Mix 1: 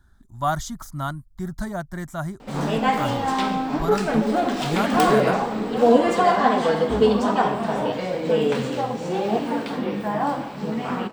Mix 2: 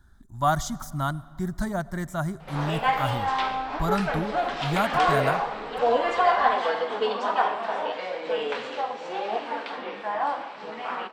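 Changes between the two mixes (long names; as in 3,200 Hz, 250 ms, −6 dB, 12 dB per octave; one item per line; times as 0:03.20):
speech: send on
background: add band-pass filter 690–3,800 Hz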